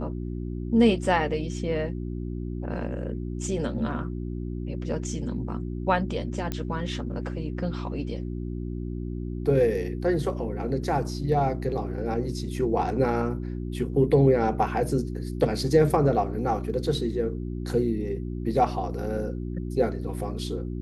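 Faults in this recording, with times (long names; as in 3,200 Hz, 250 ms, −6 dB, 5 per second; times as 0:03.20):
mains hum 60 Hz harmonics 6 −32 dBFS
0:06.52: click −15 dBFS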